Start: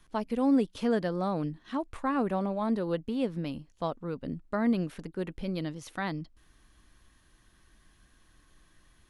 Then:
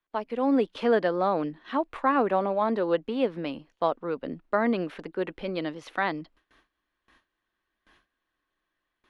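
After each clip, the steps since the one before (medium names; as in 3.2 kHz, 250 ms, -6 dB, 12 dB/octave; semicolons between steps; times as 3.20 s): gate with hold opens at -49 dBFS; three-band isolator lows -17 dB, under 300 Hz, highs -19 dB, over 3.9 kHz; level rider gain up to 5.5 dB; trim +2.5 dB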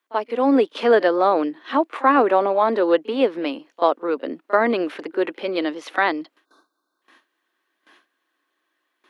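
time-frequency box 6.45–7.02 s, 1.6–3.5 kHz -29 dB; Chebyshev high-pass 290 Hz, order 3; pre-echo 35 ms -20 dB; trim +8.5 dB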